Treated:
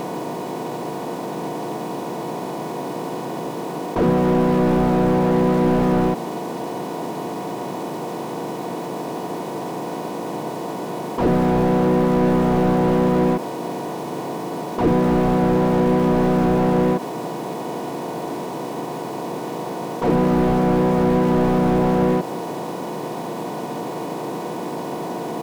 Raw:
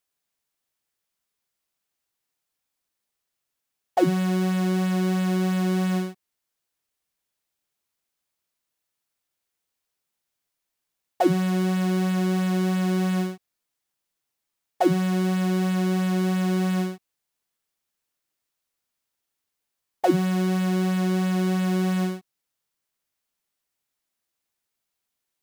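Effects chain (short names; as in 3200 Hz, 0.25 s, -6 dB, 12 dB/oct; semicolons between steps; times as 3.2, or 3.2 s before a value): per-bin compression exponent 0.2; harmoniser -3 st -5 dB, +5 st 0 dB; slew limiter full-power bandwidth 93 Hz; gain -1.5 dB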